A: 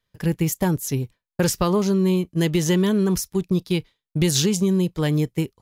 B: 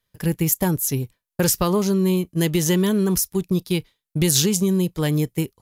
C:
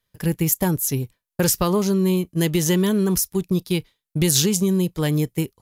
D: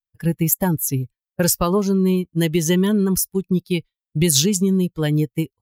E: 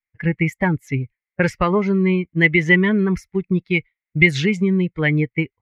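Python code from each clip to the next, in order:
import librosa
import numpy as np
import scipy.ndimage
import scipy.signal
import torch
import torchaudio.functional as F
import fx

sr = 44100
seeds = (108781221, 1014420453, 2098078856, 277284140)

y1 = fx.peak_eq(x, sr, hz=13000.0, db=10.0, octaves=1.1)
y2 = y1
y3 = fx.bin_expand(y2, sr, power=1.5)
y3 = y3 * 10.0 ** (3.5 / 20.0)
y4 = fx.lowpass_res(y3, sr, hz=2100.0, q=13.0)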